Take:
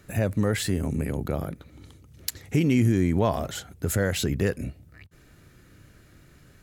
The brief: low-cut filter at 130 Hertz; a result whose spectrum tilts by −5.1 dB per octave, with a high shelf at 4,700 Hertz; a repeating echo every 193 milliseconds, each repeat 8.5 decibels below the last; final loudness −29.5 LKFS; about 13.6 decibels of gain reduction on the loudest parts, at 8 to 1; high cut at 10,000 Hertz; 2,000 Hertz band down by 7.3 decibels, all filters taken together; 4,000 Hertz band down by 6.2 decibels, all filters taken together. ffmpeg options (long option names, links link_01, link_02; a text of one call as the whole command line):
ffmpeg -i in.wav -af "highpass=130,lowpass=10000,equalizer=frequency=2000:width_type=o:gain=-8.5,equalizer=frequency=4000:width_type=o:gain=-8.5,highshelf=frequency=4700:gain=6.5,acompressor=threshold=-33dB:ratio=8,aecho=1:1:193|386|579|772:0.376|0.143|0.0543|0.0206,volume=8.5dB" out.wav